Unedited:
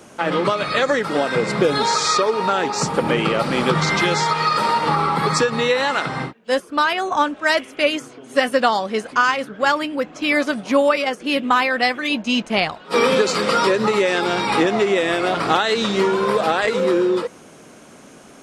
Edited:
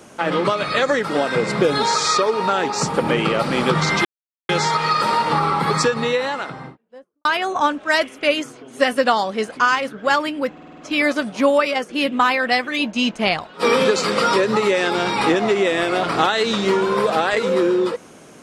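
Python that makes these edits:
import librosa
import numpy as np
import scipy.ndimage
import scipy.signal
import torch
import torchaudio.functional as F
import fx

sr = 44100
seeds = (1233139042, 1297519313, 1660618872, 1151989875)

y = fx.studio_fade_out(x, sr, start_s=5.34, length_s=1.47)
y = fx.edit(y, sr, fx.insert_silence(at_s=4.05, length_s=0.44),
    fx.stutter(start_s=10.09, slice_s=0.05, count=6), tone=tone)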